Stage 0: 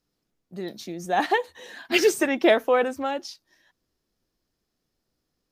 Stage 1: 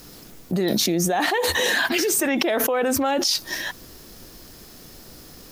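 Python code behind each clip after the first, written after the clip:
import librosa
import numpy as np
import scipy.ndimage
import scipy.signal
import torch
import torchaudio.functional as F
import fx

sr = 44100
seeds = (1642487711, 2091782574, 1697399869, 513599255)

y = fx.high_shelf(x, sr, hz=9600.0, db=10.0)
y = fx.env_flatten(y, sr, amount_pct=100)
y = y * librosa.db_to_amplitude(-7.0)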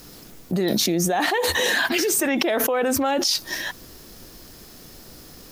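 y = x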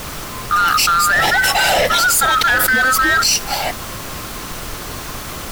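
y = fx.band_swap(x, sr, width_hz=1000)
y = fx.dmg_noise_colour(y, sr, seeds[0], colour='pink', level_db=-37.0)
y = np.clip(10.0 ** (18.5 / 20.0) * y, -1.0, 1.0) / 10.0 ** (18.5 / 20.0)
y = y * librosa.db_to_amplitude(8.5)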